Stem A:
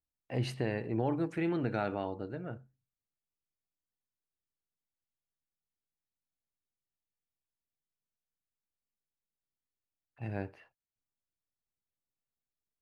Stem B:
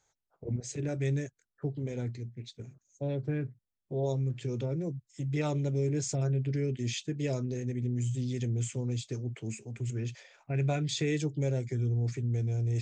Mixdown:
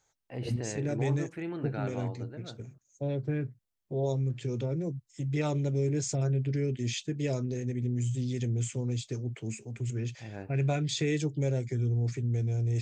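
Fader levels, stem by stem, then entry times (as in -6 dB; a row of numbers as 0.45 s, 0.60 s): -4.5 dB, +1.0 dB; 0.00 s, 0.00 s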